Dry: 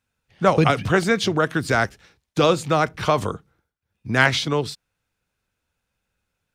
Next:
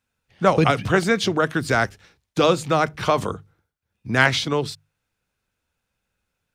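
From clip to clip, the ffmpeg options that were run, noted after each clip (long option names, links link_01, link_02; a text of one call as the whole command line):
ffmpeg -i in.wav -af "bandreject=frequency=50:width_type=h:width=6,bandreject=frequency=100:width_type=h:width=6,bandreject=frequency=150:width_type=h:width=6" out.wav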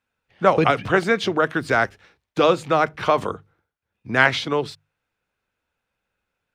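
ffmpeg -i in.wav -af "bass=frequency=250:gain=-7,treble=frequency=4000:gain=-10,volume=1.5dB" out.wav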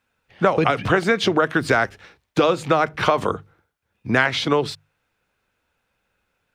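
ffmpeg -i in.wav -af "acompressor=threshold=-21dB:ratio=6,volume=7dB" out.wav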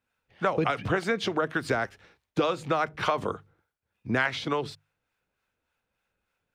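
ffmpeg -i in.wav -filter_complex "[0:a]acrossover=split=670[link_01][link_02];[link_01]aeval=exprs='val(0)*(1-0.5/2+0.5/2*cos(2*PI*3.4*n/s))':channel_layout=same[link_03];[link_02]aeval=exprs='val(0)*(1-0.5/2-0.5/2*cos(2*PI*3.4*n/s))':channel_layout=same[link_04];[link_03][link_04]amix=inputs=2:normalize=0,volume=-6dB" out.wav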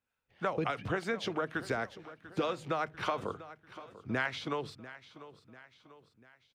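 ffmpeg -i in.wav -af "aecho=1:1:693|1386|2079|2772:0.158|0.0761|0.0365|0.0175,volume=-7dB" out.wav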